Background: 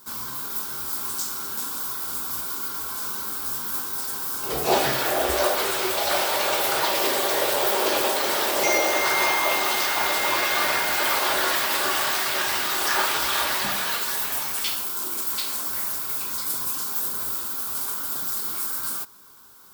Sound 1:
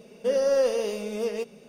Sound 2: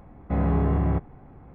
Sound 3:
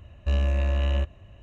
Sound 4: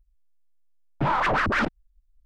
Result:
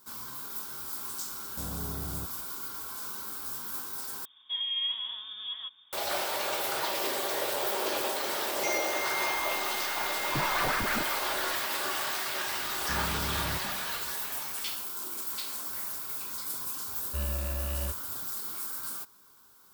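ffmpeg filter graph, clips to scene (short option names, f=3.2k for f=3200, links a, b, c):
-filter_complex "[2:a]asplit=2[a][b];[0:a]volume=-8.5dB[c];[a]lowpass=1.4k[d];[1:a]lowpass=f=3.2k:t=q:w=0.5098,lowpass=f=3.2k:t=q:w=0.6013,lowpass=f=3.2k:t=q:w=0.9,lowpass=f=3.2k:t=q:w=2.563,afreqshift=-3800[e];[4:a]aeval=exprs='val(0)+0.5*0.00668*sgn(val(0))':c=same[f];[b]asoftclip=type=tanh:threshold=-24.5dB[g];[3:a]highpass=66[h];[c]asplit=2[i][j];[i]atrim=end=4.254[k];[e]atrim=end=1.68,asetpts=PTS-STARTPTS,volume=-9.5dB[l];[j]atrim=start=5.926[m];[d]atrim=end=1.54,asetpts=PTS-STARTPTS,volume=-16dB,afade=t=in:d=0.004:c=hsin,afade=t=out:st=1.536:d=0.004:c=hsin,adelay=1270[n];[f]atrim=end=2.25,asetpts=PTS-STARTPTS,volume=-9dB,afade=t=in:d=0.004:c=hsin,afade=t=out:st=2.246:d=0.004:c=hsin,adelay=9340[o];[g]atrim=end=1.54,asetpts=PTS-STARTPTS,volume=-8.5dB,afade=t=in:d=0.004:c=hsin,afade=t=out:st=1.536:d=0.004:c=hsin,adelay=12590[p];[h]atrim=end=1.42,asetpts=PTS-STARTPTS,volume=-8dB,afade=t=in:d=0.004:c=hsin,afade=t=out:st=1.416:d=0.004:c=hsin,adelay=16870[q];[k][l]acrossfade=d=0.004:c1=hsin:c2=hsin[r];[r][m]acrossfade=d=0.004:c1=hsin:c2=hsin[s];[s][n][o][p][q]amix=inputs=5:normalize=0"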